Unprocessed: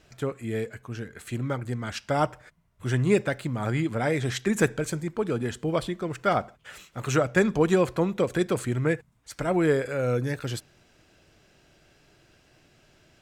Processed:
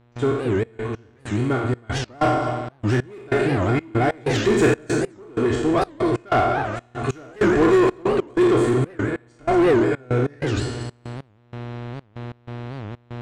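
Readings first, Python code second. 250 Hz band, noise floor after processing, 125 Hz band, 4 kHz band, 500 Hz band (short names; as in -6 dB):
+6.5 dB, -56 dBFS, +4.5 dB, +4.5 dB, +6.0 dB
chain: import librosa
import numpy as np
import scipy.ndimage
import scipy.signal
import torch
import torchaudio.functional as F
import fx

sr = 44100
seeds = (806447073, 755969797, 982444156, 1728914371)

p1 = fx.spec_trails(x, sr, decay_s=0.93)
p2 = scipy.signal.sosfilt(scipy.signal.ellip(4, 1.0, 40, 9200.0, 'lowpass', fs=sr, output='sos'), p1)
p3 = fx.low_shelf(p2, sr, hz=390.0, db=4.5)
p4 = p3 + 0.77 * np.pad(p3, (int(2.8 * sr / 1000.0), 0))[:len(p3)]
p5 = fx.echo_feedback(p4, sr, ms=233, feedback_pct=30, wet_db=-10.5)
p6 = 10.0 ** (-19.0 / 20.0) * (np.abs((p5 / 10.0 ** (-19.0 / 20.0) + 3.0) % 4.0 - 2.0) - 1.0)
p7 = p5 + F.gain(torch.from_numpy(p6), -4.0).numpy()
p8 = fx.dmg_buzz(p7, sr, base_hz=120.0, harmonics=35, level_db=-32.0, tilt_db=-6, odd_only=False)
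p9 = fx.high_shelf(p8, sr, hz=3300.0, db=-9.0)
p10 = fx.step_gate(p9, sr, bpm=95, pattern='.xxx.x..xxx.x', floor_db=-24.0, edge_ms=4.5)
y = fx.record_warp(p10, sr, rpm=78.0, depth_cents=250.0)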